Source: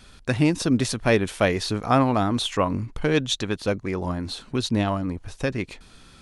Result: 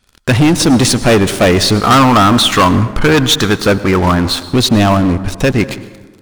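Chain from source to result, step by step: 1.8–4.4 bell 1300 Hz +8.5 dB 0.76 oct; sample leveller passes 5; plate-style reverb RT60 1.4 s, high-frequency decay 0.5×, pre-delay 90 ms, DRR 14 dB; gain -1 dB

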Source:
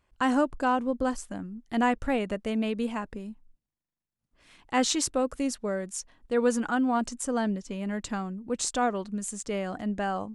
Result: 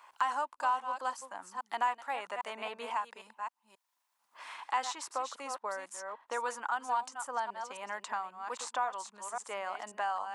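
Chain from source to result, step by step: reverse delay 0.268 s, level -10 dB; resonant high-pass 940 Hz, resonance Q 4.1; three-band squash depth 70%; gain -8.5 dB

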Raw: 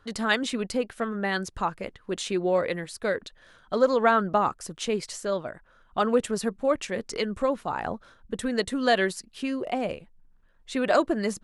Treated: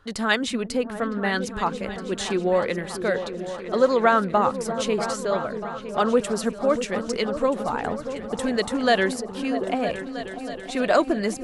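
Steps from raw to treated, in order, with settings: repeats that get brighter 0.32 s, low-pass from 200 Hz, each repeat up 2 oct, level -6 dB; gain +2.5 dB

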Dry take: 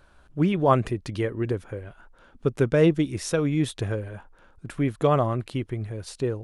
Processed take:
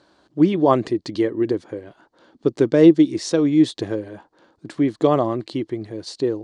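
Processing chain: speaker cabinet 190–7700 Hz, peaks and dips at 320 Hz +9 dB, 1400 Hz -8 dB, 2500 Hz -7 dB, 4400 Hz +8 dB; gain +3.5 dB

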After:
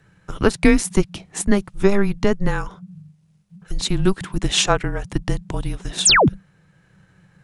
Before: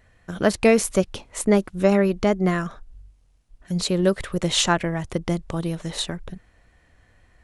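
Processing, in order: painted sound fall, 6.05–6.29, 270–10000 Hz -15 dBFS; transient shaper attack +2 dB, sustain -2 dB; frequency shift -200 Hz; gain +2 dB

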